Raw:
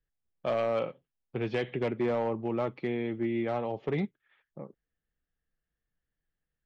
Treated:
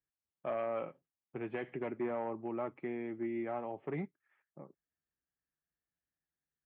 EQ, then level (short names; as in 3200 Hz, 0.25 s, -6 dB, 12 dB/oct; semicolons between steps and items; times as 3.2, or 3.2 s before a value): air absorption 290 m; speaker cabinet 100–2600 Hz, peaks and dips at 120 Hz -9 dB, 210 Hz -6 dB, 480 Hz -7 dB; -4.0 dB